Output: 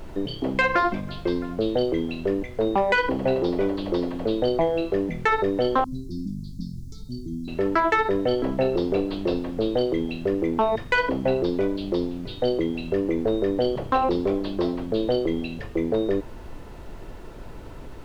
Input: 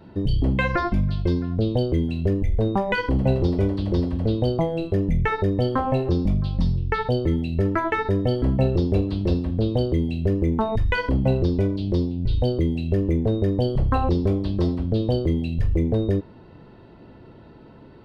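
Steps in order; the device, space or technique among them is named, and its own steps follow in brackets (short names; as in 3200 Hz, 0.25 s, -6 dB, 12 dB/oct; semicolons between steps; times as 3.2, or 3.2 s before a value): aircraft cabin announcement (BPF 360–4100 Hz; soft clip -16.5 dBFS, distortion -21 dB; brown noise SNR 13 dB); 5.84–7.48 inverse Chebyshev band-stop 460–2900 Hz, stop band 40 dB; gain +5 dB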